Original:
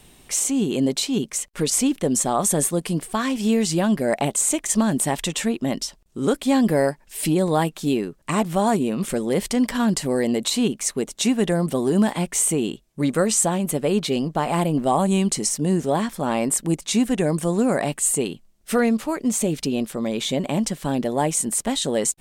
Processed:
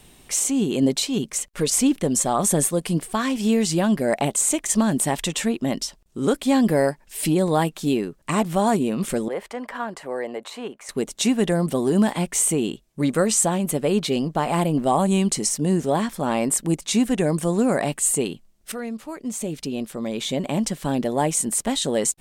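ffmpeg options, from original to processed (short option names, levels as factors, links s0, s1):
-filter_complex "[0:a]asettb=1/sr,asplit=3[s0][s1][s2];[s0]atrim=end=0.824[s3];[s1]atrim=start=0.82:end=2.98,asetpts=PTS-STARTPTS,afade=t=in:d=0.004:c=qsin,afade=t=out:st=2.156:d=0.004:c=qsin,aphaser=in_gain=1:out_gain=1:delay=1.9:decay=0.23:speed=1.8:type=sinusoidal[s4];[s2]atrim=start=2.976[s5];[s3][s4]acrossfade=d=0.004:c1=hsin:c2=qsin[s6];[s6][s5]acrossfade=d=0.004:c1=qsin:c2=hsin,asettb=1/sr,asplit=3[s7][s8][s9];[s7]atrim=end=9.284[s10];[s8]atrim=start=9.28:end=10.89,asetpts=PTS-STARTPTS,afade=t=in:d=0.004:c=qsin,afade=t=out:st=1.606:d=0.004:c=qsin,acrossover=split=470 2100:gain=0.1 1 0.126[s11][s12][s13];[s11][s12][s13]amix=inputs=3:normalize=0[s14];[s9]atrim=start=10.886[s15];[s10][s14]acrossfade=d=0.004:c1=hsin:c2=qsin[s16];[s16][s15]acrossfade=d=0.004:c1=qsin:c2=hsin,asplit=2[s17][s18];[s17]atrim=end=18.72,asetpts=PTS-STARTPTS,afade=t=out:st=18.716:d=0.004:c=hsin:silence=0.211349[s19];[s18]atrim=start=18.72,asetpts=PTS-STARTPTS,afade=t=in:d=2.07:silence=0.211349[s20];[s19][s20]concat=n=2:v=0:a=1"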